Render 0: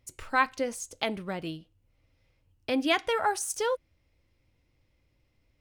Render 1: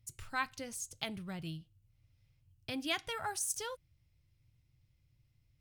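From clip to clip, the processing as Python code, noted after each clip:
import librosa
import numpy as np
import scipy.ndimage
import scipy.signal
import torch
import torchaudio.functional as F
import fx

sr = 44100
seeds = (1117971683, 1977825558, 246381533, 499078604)

y = fx.graphic_eq_10(x, sr, hz=(125, 250, 500, 1000, 2000, 16000), db=(12, -7, -10, -5, -4, 5))
y = y * librosa.db_to_amplitude(-4.5)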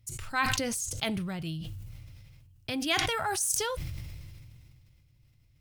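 y = fx.sustainer(x, sr, db_per_s=23.0)
y = y * librosa.db_to_amplitude(6.0)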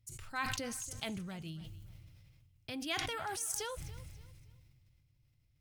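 y = fx.echo_feedback(x, sr, ms=284, feedback_pct=31, wet_db=-18.0)
y = y * librosa.db_to_amplitude(-9.0)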